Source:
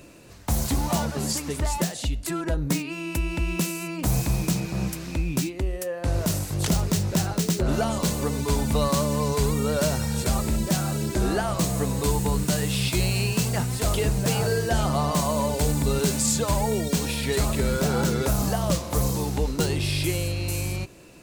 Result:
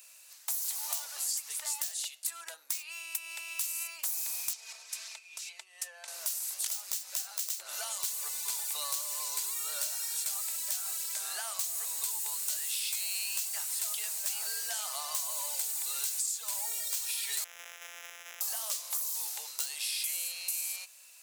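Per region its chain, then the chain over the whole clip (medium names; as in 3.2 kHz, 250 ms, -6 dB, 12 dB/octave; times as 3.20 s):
4.53–6.08 s: low-pass 7.3 kHz + comb 4.5 ms, depth 87% + compression 12:1, threshold -28 dBFS
17.44–18.41 s: sorted samples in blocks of 256 samples + boxcar filter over 10 samples + peaking EQ 960 Hz -13.5 dB 1.2 oct
whole clip: high-pass 640 Hz 24 dB/octave; differentiator; compression 10:1, threshold -33 dBFS; trim +3 dB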